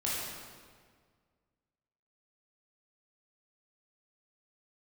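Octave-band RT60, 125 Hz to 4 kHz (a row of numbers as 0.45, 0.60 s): 2.1, 2.0, 1.8, 1.7, 1.5, 1.3 s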